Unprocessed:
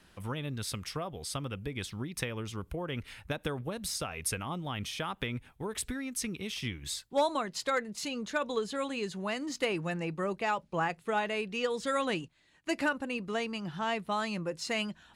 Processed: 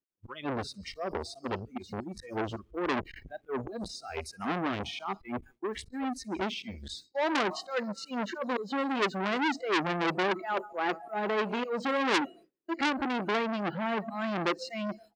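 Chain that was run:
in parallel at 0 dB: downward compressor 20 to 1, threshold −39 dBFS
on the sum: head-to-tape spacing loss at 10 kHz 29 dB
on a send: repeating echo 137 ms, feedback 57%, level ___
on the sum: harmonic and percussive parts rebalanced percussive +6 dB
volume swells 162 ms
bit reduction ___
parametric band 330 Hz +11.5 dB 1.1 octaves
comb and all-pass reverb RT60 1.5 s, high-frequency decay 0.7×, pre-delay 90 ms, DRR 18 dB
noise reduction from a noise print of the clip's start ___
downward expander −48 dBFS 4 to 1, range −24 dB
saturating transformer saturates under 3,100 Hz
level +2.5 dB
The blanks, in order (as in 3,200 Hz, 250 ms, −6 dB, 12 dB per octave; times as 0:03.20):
−21.5 dB, 10 bits, 24 dB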